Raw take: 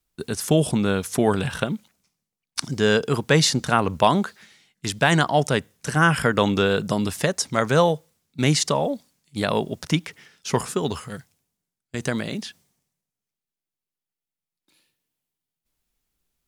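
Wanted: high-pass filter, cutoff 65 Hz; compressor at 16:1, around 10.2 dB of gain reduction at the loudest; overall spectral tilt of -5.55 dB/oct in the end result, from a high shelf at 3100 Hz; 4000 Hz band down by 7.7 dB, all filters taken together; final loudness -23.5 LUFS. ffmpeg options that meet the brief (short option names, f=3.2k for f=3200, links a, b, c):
-af "highpass=65,highshelf=f=3.1k:g=-6,equalizer=f=4k:t=o:g=-5.5,acompressor=threshold=-22dB:ratio=16,volume=6.5dB"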